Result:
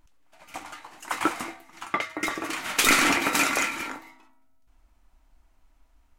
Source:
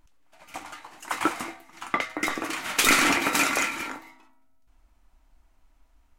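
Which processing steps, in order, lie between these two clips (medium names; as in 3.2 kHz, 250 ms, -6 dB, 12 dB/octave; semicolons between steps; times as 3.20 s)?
1.85–2.49 s: comb of notches 250 Hz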